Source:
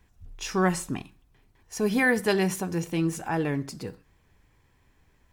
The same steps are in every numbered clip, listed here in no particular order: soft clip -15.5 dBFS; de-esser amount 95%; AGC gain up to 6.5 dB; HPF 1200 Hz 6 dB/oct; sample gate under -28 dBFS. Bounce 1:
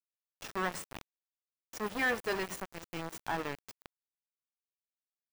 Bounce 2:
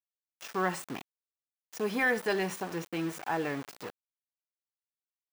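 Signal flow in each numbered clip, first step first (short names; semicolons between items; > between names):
AGC > soft clip > HPF > sample gate > de-esser; soft clip > AGC > sample gate > HPF > de-esser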